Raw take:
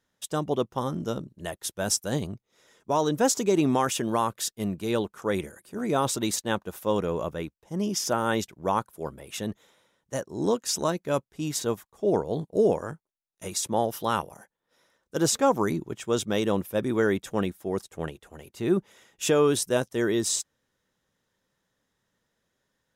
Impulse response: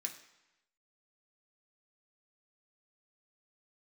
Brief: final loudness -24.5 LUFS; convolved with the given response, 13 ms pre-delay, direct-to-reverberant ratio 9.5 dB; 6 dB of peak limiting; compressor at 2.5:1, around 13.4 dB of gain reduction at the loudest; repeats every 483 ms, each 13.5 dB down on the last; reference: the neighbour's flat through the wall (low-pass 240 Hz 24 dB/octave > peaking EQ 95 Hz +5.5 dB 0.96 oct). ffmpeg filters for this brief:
-filter_complex "[0:a]acompressor=threshold=0.0112:ratio=2.5,alimiter=level_in=1.78:limit=0.0631:level=0:latency=1,volume=0.562,aecho=1:1:483|966:0.211|0.0444,asplit=2[s0][s1];[1:a]atrim=start_sample=2205,adelay=13[s2];[s1][s2]afir=irnorm=-1:irlink=0,volume=0.398[s3];[s0][s3]amix=inputs=2:normalize=0,lowpass=f=240:w=0.5412,lowpass=f=240:w=1.3066,equalizer=f=95:t=o:w=0.96:g=5.5,volume=11.9"

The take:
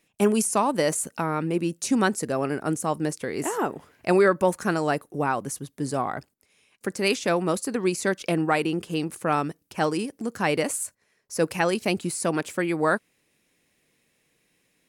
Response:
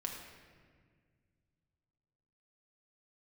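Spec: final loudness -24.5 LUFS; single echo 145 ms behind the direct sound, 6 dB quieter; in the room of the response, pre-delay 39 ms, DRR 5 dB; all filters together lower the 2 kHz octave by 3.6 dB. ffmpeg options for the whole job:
-filter_complex "[0:a]equalizer=f=2000:t=o:g=-5,aecho=1:1:145:0.501,asplit=2[s0][s1];[1:a]atrim=start_sample=2205,adelay=39[s2];[s1][s2]afir=irnorm=-1:irlink=0,volume=0.531[s3];[s0][s3]amix=inputs=2:normalize=0,volume=0.944"

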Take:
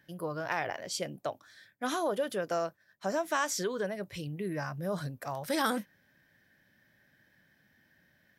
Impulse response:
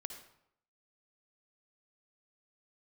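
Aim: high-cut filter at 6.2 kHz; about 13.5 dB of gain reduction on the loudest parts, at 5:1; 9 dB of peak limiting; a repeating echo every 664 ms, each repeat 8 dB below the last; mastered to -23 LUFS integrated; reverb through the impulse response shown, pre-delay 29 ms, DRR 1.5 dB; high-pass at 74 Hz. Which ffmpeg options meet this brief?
-filter_complex "[0:a]highpass=74,lowpass=6200,acompressor=threshold=0.00794:ratio=5,alimiter=level_in=3.98:limit=0.0631:level=0:latency=1,volume=0.251,aecho=1:1:664|1328|1992|2656|3320:0.398|0.159|0.0637|0.0255|0.0102,asplit=2[s0][s1];[1:a]atrim=start_sample=2205,adelay=29[s2];[s1][s2]afir=irnorm=-1:irlink=0,volume=1.12[s3];[s0][s3]amix=inputs=2:normalize=0,volume=11.9"

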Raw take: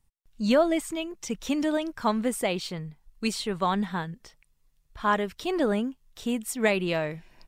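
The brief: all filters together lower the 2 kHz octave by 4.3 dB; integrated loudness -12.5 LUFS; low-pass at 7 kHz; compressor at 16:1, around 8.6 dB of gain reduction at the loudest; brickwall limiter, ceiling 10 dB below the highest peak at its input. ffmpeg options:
-af "lowpass=7000,equalizer=f=2000:t=o:g=-5.5,acompressor=threshold=0.0562:ratio=16,volume=15,alimiter=limit=0.708:level=0:latency=1"

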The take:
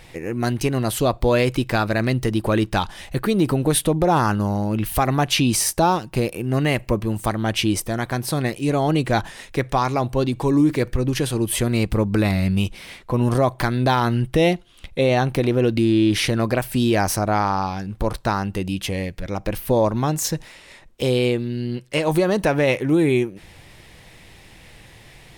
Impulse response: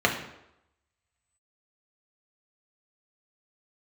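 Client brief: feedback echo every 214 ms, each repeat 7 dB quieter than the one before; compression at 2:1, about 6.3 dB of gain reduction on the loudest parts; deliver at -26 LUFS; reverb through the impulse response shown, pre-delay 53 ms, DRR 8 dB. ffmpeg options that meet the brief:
-filter_complex "[0:a]acompressor=threshold=0.0562:ratio=2,aecho=1:1:214|428|642|856|1070:0.447|0.201|0.0905|0.0407|0.0183,asplit=2[s0][s1];[1:a]atrim=start_sample=2205,adelay=53[s2];[s1][s2]afir=irnorm=-1:irlink=0,volume=0.0631[s3];[s0][s3]amix=inputs=2:normalize=0,volume=0.891"

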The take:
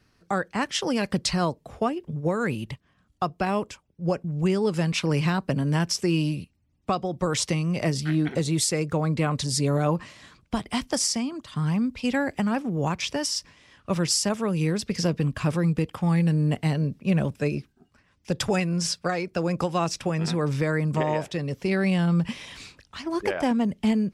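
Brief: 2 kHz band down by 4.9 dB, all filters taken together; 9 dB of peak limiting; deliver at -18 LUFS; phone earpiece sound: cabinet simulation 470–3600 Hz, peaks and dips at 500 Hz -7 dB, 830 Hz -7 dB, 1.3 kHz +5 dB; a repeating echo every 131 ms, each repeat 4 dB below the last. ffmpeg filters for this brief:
-af "equalizer=f=2000:t=o:g=-7.5,alimiter=limit=0.0841:level=0:latency=1,highpass=470,equalizer=f=500:t=q:w=4:g=-7,equalizer=f=830:t=q:w=4:g=-7,equalizer=f=1300:t=q:w=4:g=5,lowpass=f=3600:w=0.5412,lowpass=f=3600:w=1.3066,aecho=1:1:131|262|393|524|655|786|917|1048|1179:0.631|0.398|0.25|0.158|0.0994|0.0626|0.0394|0.0249|0.0157,volume=10"

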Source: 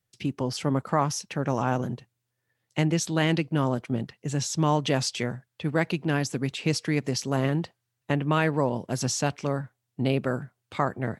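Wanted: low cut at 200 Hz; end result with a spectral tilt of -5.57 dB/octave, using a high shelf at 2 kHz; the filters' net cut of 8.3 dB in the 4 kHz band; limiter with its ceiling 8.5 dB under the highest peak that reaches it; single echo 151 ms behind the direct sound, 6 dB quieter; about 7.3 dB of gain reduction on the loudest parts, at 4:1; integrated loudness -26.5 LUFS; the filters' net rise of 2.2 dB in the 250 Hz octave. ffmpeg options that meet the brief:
-af "highpass=200,equalizer=f=250:t=o:g=5,highshelf=f=2000:g=-5,equalizer=f=4000:t=o:g=-6.5,acompressor=threshold=0.0398:ratio=4,alimiter=limit=0.0668:level=0:latency=1,aecho=1:1:151:0.501,volume=2.51"

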